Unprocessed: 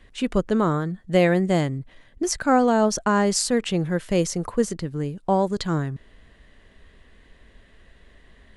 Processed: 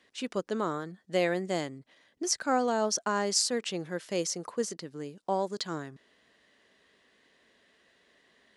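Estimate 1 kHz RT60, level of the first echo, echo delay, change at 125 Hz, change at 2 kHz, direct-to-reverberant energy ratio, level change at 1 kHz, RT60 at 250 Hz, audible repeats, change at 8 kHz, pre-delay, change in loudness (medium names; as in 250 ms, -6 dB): no reverb, no echo, no echo, -17.0 dB, -7.5 dB, no reverb, -8.0 dB, no reverb, no echo, -3.0 dB, no reverb, -8.5 dB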